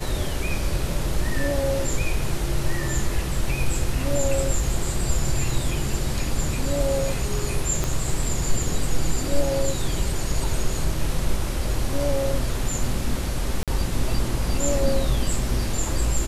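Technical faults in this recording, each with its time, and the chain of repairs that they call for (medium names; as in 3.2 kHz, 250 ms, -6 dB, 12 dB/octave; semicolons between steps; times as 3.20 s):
7.84 s: pop -10 dBFS
13.63–13.68 s: dropout 47 ms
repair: de-click; interpolate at 13.63 s, 47 ms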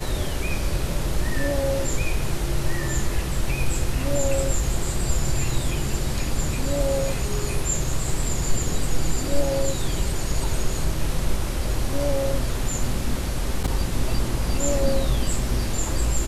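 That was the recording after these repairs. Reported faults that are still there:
7.84 s: pop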